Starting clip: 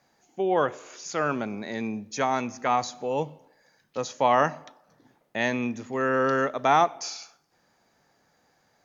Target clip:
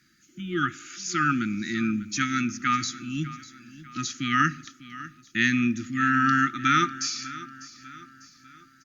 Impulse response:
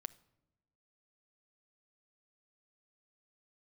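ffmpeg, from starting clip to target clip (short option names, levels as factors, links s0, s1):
-filter_complex "[0:a]afftfilt=real='re*(1-between(b*sr/4096,360,1200))':imag='im*(1-between(b*sr/4096,360,1200))':win_size=4096:overlap=0.75,asplit=2[s0][s1];[s1]aecho=0:1:598|1196|1794|2392:0.141|0.0636|0.0286|0.0129[s2];[s0][s2]amix=inputs=2:normalize=0,volume=1.88" -ar 48000 -c:a libopus -b:a 48k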